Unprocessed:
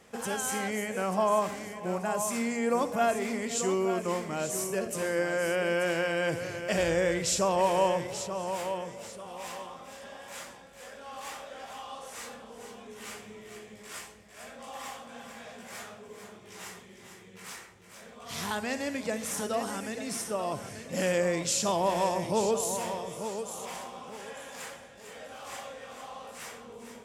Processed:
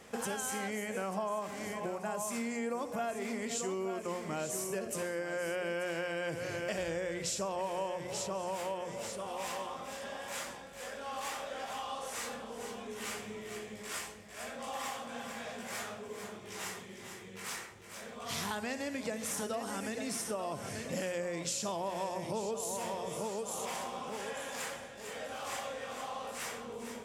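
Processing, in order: compressor, threshold -37 dBFS, peak gain reduction 15 dB; notches 60/120/180 Hz; gain +3 dB

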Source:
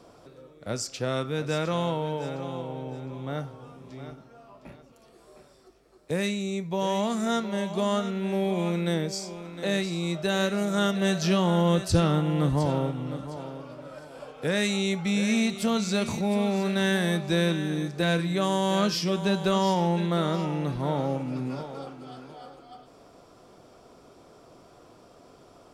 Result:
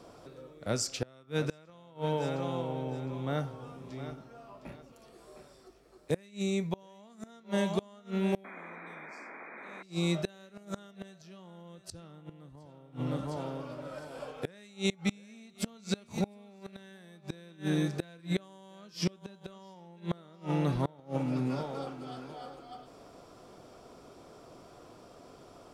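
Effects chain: painted sound noise, 8.44–9.83, 210–2500 Hz -19 dBFS; flipped gate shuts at -18 dBFS, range -28 dB

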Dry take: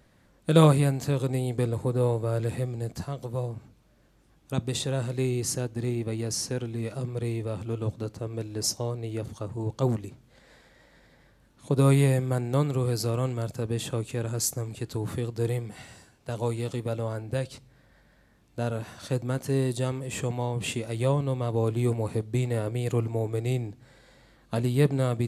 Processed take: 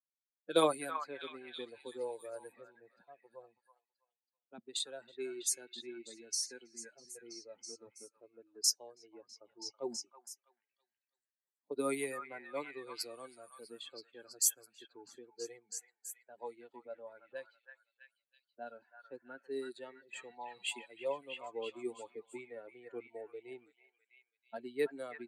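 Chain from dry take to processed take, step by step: per-bin expansion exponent 2; HPF 320 Hz 24 dB/oct; high shelf 3000 Hz +7.5 dB; low-pass opened by the level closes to 920 Hz, open at -30 dBFS; delay with a stepping band-pass 0.326 s, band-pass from 1400 Hz, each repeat 0.7 oct, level -3 dB; gain -5 dB

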